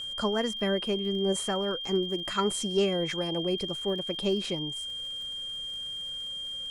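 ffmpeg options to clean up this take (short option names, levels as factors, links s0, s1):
-af "adeclick=t=4,bandreject=f=3200:w=30"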